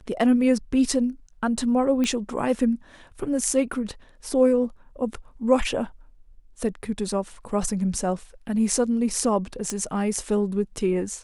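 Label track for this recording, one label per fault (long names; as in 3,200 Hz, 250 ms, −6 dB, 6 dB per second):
2.040000	2.040000	click −13 dBFS
9.700000	9.700000	click −13 dBFS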